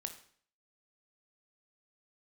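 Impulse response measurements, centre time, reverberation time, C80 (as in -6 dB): 11 ms, 0.55 s, 14.0 dB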